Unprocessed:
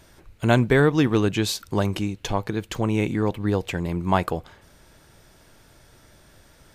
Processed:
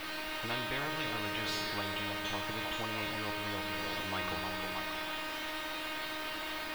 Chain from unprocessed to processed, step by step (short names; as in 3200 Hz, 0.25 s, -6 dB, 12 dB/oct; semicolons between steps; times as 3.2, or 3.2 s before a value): per-bin expansion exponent 1.5; in parallel at -2 dB: limiter -16.5 dBFS, peak gain reduction 10 dB; on the sum: requantised 6-bit, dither triangular; 3.63–4.05 wrapped overs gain 26.5 dB; resonator 310 Hz, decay 0.6 s, mix 100%; added noise blue -51 dBFS; air absorption 420 m; delay with a stepping band-pass 0.314 s, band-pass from 660 Hz, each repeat 0.7 oct, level -8.5 dB; on a send at -10.5 dB: reverb RT60 2.7 s, pre-delay 3 ms; on the sum: spectral compressor 10:1